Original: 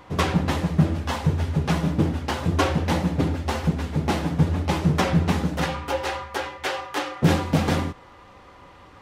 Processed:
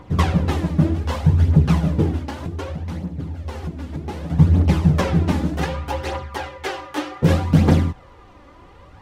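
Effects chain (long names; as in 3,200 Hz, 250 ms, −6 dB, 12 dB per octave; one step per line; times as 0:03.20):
phase shifter 0.65 Hz, delay 3.6 ms, feedback 46%
low-shelf EQ 430 Hz +8.5 dB
0:02.20–0:04.30: downward compressor 6 to 1, threshold −23 dBFS, peak gain reduction 16.5 dB
level −3 dB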